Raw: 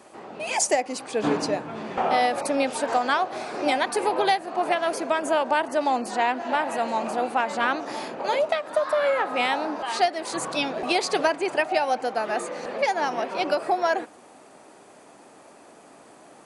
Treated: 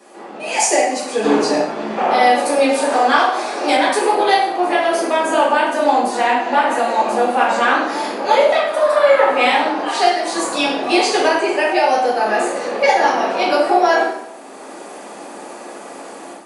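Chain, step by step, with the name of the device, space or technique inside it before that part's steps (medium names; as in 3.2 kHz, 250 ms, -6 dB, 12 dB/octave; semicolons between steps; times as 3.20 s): far laptop microphone (reverberation RT60 0.75 s, pre-delay 3 ms, DRR -7 dB; high-pass 200 Hz 24 dB/octave; level rider gain up to 9.5 dB); 3.18–3.77 s: tone controls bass -9 dB, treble +4 dB; trim -1 dB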